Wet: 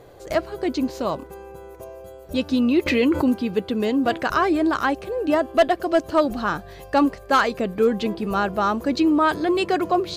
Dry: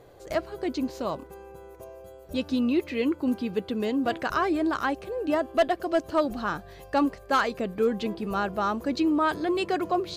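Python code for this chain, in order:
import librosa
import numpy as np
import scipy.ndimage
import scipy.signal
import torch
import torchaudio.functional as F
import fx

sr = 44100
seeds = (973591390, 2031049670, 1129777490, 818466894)

y = fx.env_flatten(x, sr, amount_pct=70, at=(2.86, 3.31))
y = F.gain(torch.from_numpy(y), 5.5).numpy()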